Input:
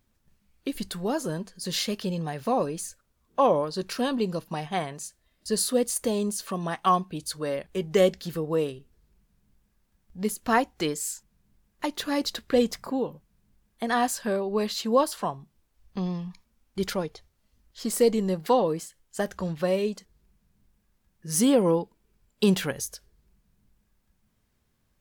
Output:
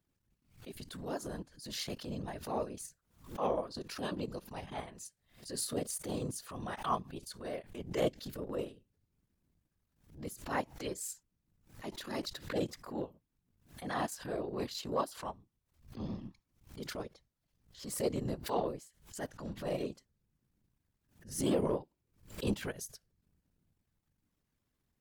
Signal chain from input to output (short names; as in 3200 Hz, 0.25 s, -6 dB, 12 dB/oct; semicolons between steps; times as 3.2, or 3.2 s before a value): whisperiser; transient shaper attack -11 dB, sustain -7 dB; backwards sustainer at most 130 dB/s; gain -8.5 dB